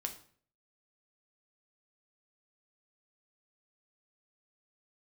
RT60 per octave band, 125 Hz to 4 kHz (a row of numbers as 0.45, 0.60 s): 0.65, 0.55, 0.55, 0.50, 0.45, 0.40 s